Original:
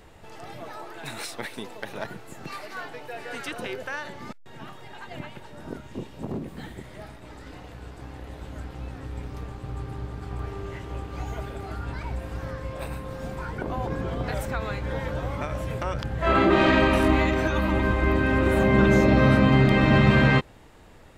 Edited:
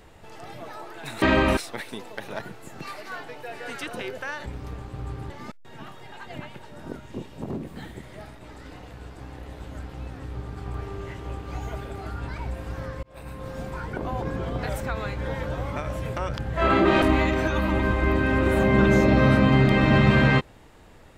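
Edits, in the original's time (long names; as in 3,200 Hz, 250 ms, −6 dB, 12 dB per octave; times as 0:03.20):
0:09.16–0:10.00: move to 0:04.11
0:12.68–0:13.11: fade in
0:16.67–0:17.02: move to 0:01.22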